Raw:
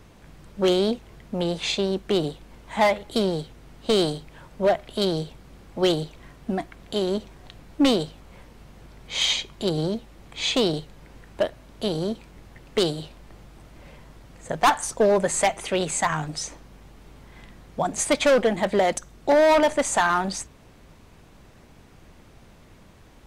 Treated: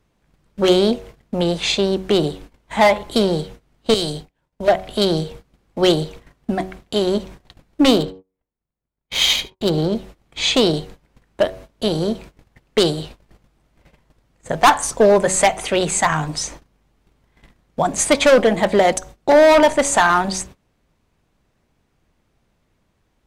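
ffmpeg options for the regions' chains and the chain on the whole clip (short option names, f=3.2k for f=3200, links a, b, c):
-filter_complex "[0:a]asettb=1/sr,asplit=3[a][b][c];[a]atrim=end=3.944[d];[b]atrim=start=3.94:end=4.68,asetpts=PTS-STARTPTS,afade=t=in:d=0.004:c=qsin,afade=t=out:st=0.736:d=0.004:c=qsin,agate=range=-33dB:threshold=-38dB:ratio=3:release=100:detection=peak,equalizer=f=1.2k:t=o:w=0.29:g=-5,acrossover=split=130|3000[e][f][g];[f]acompressor=threshold=-33dB:ratio=2.5:attack=3.2:release=140:knee=2.83:detection=peak[h];[e][h][g]amix=inputs=3:normalize=0[i];[c]atrim=start=4.676[j];[d][i]acrossfade=d=0.004:c1=hsin:c2=qsin[k];[k][j]acrossfade=d=0.004:c1=qsin:c2=hsin,asettb=1/sr,asplit=3[l][m][n];[l]atrim=end=7.884[o];[m]atrim=start=7.88:end=9.95,asetpts=PTS-STARTPTS,afade=t=in:d=0.004:c=qsin,afade=t=out:st=2.066:d=0.004:c=qsin,agate=range=-26dB:threshold=-42dB:ratio=16:release=100:detection=peak,adynamicsmooth=sensitivity=6:basefreq=3.2k,aecho=1:1:74:0.112,atrim=end_sample=91287[p];[n]atrim=start=9.946[q];[o][p]acrossfade=d=0.004:c1=hsin:c2=qsin[r];[r][q]acrossfade=d=0.004:c1=qsin:c2=hsin,bandreject=f=93.85:t=h:w=4,bandreject=f=187.7:t=h:w=4,bandreject=f=281.55:t=h:w=4,bandreject=f=375.4:t=h:w=4,bandreject=f=469.25:t=h:w=4,bandreject=f=563.1:t=h:w=4,bandreject=f=656.95:t=h:w=4,bandreject=f=750.8:t=h:w=4,bandreject=f=844.65:t=h:w=4,bandreject=f=938.5:t=h:w=4,bandreject=f=1.03235k:t=h:w=4,bandreject=f=1.1262k:t=h:w=4,agate=range=-21dB:threshold=-42dB:ratio=16:detection=peak,volume=6.5dB"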